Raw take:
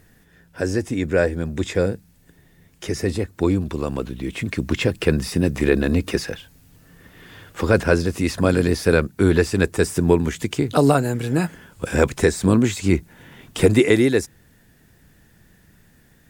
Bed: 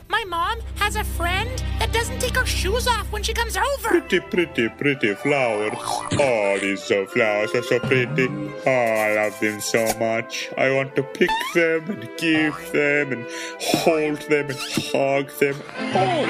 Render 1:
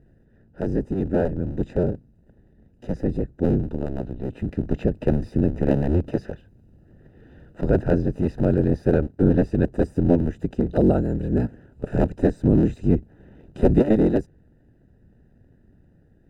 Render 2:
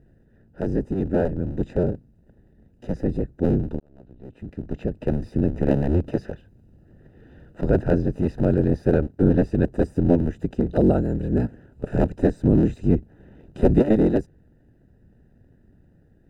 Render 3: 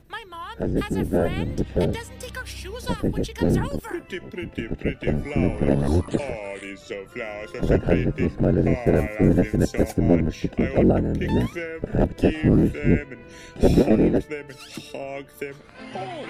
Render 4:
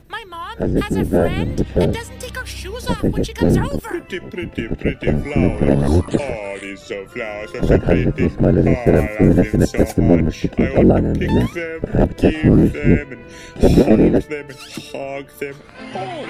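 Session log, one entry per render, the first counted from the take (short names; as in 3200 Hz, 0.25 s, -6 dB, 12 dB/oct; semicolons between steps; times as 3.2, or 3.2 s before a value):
cycle switcher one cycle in 3, inverted; running mean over 40 samples
3.8–5.62 fade in
add bed -13 dB
gain +6 dB; limiter -1 dBFS, peak gain reduction 2.5 dB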